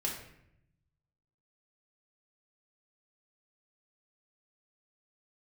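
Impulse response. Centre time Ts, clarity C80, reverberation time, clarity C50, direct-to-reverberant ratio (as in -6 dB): 35 ms, 8.0 dB, 0.75 s, 4.5 dB, -2.0 dB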